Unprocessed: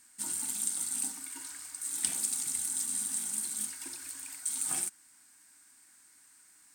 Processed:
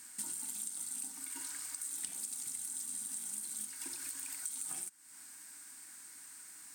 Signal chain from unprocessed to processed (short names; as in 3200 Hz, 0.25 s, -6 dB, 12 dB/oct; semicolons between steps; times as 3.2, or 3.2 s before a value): HPF 66 Hz; high shelf 11000 Hz +4.5 dB; compressor 6:1, threshold -46 dBFS, peak gain reduction 21 dB; gain +6.5 dB